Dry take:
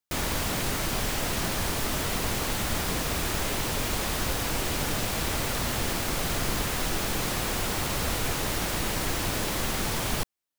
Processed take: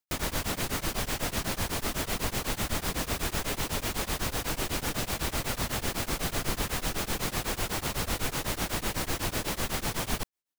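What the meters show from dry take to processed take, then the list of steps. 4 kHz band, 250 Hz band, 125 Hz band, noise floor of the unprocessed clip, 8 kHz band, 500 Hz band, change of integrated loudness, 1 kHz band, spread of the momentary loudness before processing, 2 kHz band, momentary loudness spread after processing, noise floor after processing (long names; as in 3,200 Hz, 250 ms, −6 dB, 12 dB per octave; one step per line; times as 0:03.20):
−3.0 dB, −3.0 dB, −3.0 dB, −30 dBFS, −3.0 dB, −3.0 dB, −3.0 dB, −3.0 dB, 0 LU, −3.0 dB, 1 LU, −46 dBFS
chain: tremolo along a rectified sine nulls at 8 Hz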